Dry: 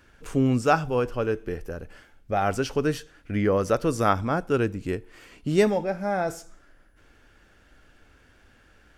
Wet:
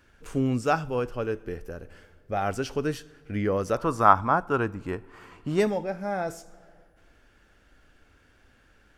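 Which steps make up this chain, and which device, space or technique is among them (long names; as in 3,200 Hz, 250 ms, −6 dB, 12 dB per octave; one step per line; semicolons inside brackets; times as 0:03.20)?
0:03.77–0:05.60: drawn EQ curve 520 Hz 0 dB, 1,000 Hz +14 dB, 2,100 Hz 0 dB, 5,400 Hz −4 dB
compressed reverb return (on a send at −10.5 dB: convolution reverb RT60 1.4 s, pre-delay 36 ms + downward compressor, threshold −36 dBFS, peak gain reduction 23.5 dB)
on the sum: level −3.5 dB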